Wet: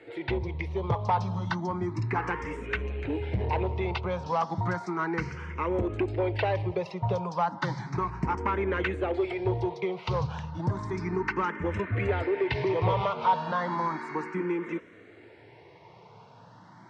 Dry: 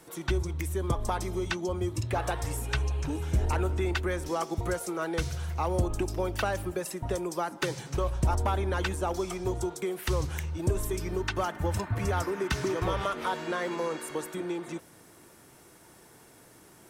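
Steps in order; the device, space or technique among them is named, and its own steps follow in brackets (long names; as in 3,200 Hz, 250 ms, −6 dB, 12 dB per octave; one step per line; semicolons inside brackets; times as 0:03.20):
barber-pole phaser into a guitar amplifier (frequency shifter mixed with the dry sound +0.33 Hz; soft clipping −25 dBFS, distortion −16 dB; loudspeaker in its box 100–4,200 Hz, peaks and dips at 110 Hz +9 dB, 180 Hz +5 dB, 440 Hz +5 dB, 950 Hz +8 dB, 2,100 Hz +7 dB, 3,400 Hz −4 dB)
level +4 dB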